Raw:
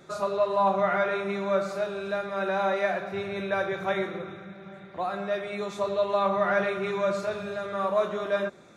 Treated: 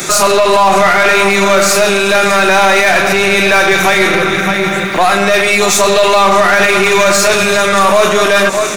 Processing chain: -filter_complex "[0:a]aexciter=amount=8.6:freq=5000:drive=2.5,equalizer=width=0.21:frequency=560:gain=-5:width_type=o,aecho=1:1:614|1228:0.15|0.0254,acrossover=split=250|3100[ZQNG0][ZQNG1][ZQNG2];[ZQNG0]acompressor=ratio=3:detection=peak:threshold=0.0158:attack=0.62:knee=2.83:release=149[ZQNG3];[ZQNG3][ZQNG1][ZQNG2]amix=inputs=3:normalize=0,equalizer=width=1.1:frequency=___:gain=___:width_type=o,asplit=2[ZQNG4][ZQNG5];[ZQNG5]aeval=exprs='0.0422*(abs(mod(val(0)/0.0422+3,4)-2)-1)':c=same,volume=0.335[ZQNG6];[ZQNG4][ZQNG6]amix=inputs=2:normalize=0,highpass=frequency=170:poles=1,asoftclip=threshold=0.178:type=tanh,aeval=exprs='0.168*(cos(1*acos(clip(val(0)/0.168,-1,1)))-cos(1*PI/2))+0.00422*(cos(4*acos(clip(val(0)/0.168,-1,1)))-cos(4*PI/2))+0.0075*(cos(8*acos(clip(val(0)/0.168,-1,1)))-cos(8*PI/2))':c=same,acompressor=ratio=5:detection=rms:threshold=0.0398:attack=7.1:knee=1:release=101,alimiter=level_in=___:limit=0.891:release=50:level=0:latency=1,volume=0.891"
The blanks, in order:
2700, 11.5, 23.7